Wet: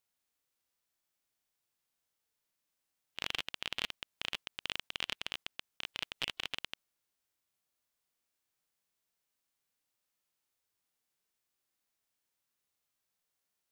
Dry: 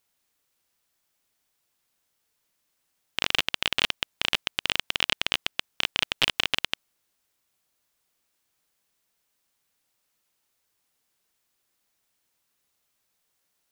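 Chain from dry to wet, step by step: harmonic-percussive split percussive -9 dB; trim -6.5 dB

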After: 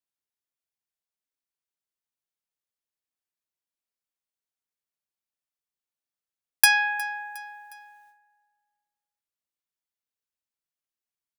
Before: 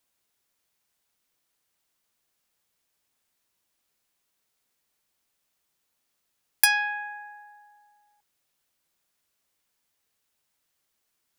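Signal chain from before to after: gate with hold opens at -58 dBFS; on a send: feedback delay 360 ms, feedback 48%, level -22 dB; on the sum: trim +3 dB

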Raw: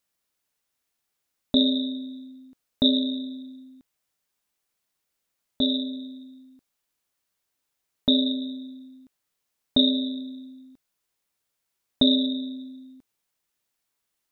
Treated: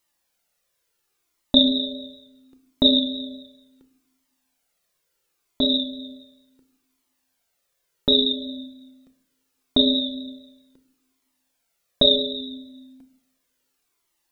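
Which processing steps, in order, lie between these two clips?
FFT filter 200 Hz 0 dB, 430 Hz +7 dB, 890 Hz +3 dB; reverberation RT60 0.70 s, pre-delay 6 ms, DRR 8.5 dB; Shepard-style flanger falling 0.71 Hz; trim +6.5 dB

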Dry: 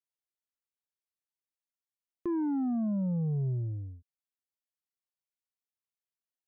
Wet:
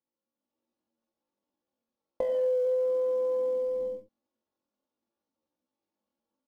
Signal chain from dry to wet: monotone LPC vocoder at 8 kHz 270 Hz; high-pass 78 Hz 6 dB/octave; distance through air 390 m; in parallel at -10.5 dB: sample-rate reducer 1.4 kHz, jitter 20%; on the sum: ten-band graphic EQ 125 Hz +11 dB, 250 Hz +11 dB, 500 Hz +9 dB, 1 kHz -6 dB; on a send: early reflections 56 ms -5.5 dB, 73 ms -8.5 dB; on the sum: level rider gain up to 7.5 dB; comb 6.7 ms, depth 57%; pitch shift +11 st; compression 6:1, threshold -28 dBFS, peak gain reduction 21.5 dB

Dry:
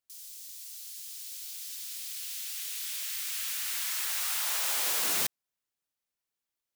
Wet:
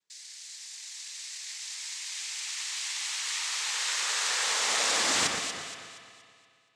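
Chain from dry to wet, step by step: noise-vocoded speech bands 6; echo whose repeats swap between lows and highs 118 ms, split 2 kHz, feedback 63%, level -3 dB; spring tank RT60 2.3 s, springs 57 ms, chirp 75 ms, DRR 6.5 dB; trim +6 dB

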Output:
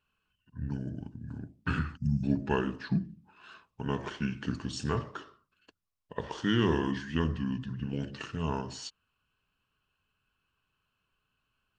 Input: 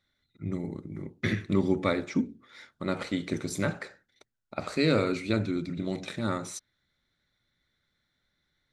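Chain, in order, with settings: speed mistake 45 rpm record played at 33 rpm; time-frequency box 1.97–2.24 s, 240–4600 Hz -27 dB; trim -2.5 dB

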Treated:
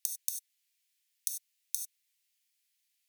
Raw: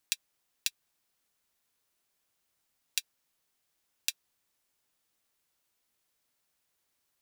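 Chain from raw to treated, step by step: steep high-pass 830 Hz 36 dB/octave; gated-style reverb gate 250 ms flat, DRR 2.5 dB; speed mistake 33 rpm record played at 78 rpm; trim +2.5 dB

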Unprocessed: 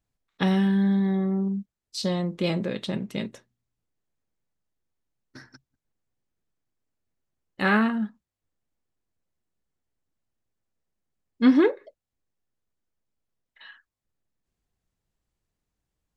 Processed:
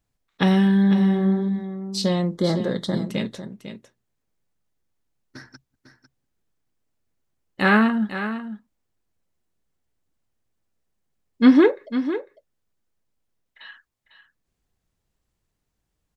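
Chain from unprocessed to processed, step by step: 2.37–3.02 s: Butterworth band-stop 2.6 kHz, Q 1.7; delay 500 ms -11 dB; trim +4.5 dB

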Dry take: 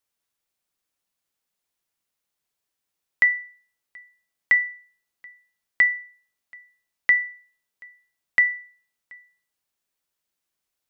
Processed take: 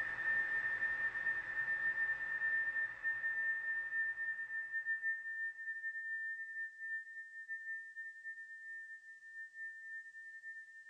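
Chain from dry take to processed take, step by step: knee-point frequency compression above 1.5 kHz 1.5:1; compression 5:1, threshold -36 dBFS, peak gain reduction 18.5 dB; gated-style reverb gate 270 ms flat, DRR -2.5 dB; Paulstretch 46×, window 0.25 s, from 4.74 s; attacks held to a fixed rise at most 440 dB/s

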